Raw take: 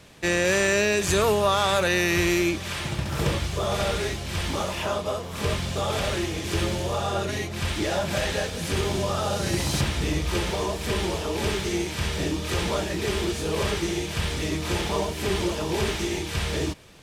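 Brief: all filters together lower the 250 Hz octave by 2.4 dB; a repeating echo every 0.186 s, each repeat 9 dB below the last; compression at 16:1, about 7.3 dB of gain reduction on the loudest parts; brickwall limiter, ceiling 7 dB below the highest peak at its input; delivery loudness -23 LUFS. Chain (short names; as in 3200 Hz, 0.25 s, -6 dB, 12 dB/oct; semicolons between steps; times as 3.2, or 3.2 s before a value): bell 250 Hz -4 dB; compressor 16:1, threshold -25 dBFS; limiter -21 dBFS; feedback echo 0.186 s, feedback 35%, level -9 dB; gain +7.5 dB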